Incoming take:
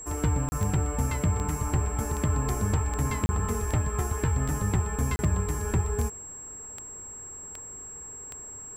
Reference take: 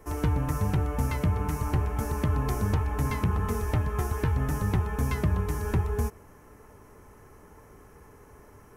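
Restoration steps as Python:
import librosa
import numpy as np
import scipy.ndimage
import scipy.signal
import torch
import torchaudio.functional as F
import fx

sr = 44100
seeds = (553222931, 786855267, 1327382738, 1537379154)

y = fx.fix_declick_ar(x, sr, threshold=10.0)
y = fx.notch(y, sr, hz=7600.0, q=30.0)
y = fx.fix_interpolate(y, sr, at_s=(0.49, 3.26, 5.16), length_ms=30.0)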